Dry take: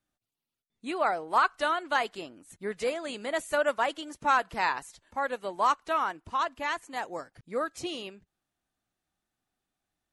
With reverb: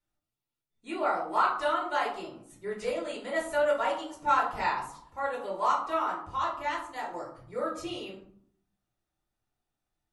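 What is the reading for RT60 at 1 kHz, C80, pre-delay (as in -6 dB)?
0.65 s, 10.0 dB, 3 ms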